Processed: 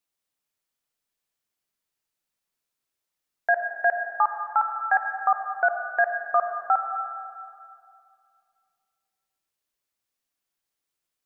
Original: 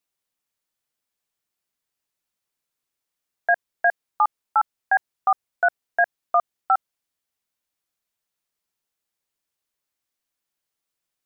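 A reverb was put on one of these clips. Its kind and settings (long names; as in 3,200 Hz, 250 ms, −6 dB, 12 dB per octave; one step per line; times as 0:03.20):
comb and all-pass reverb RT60 2.3 s, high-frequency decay 0.95×, pre-delay 25 ms, DRR 5 dB
level −2 dB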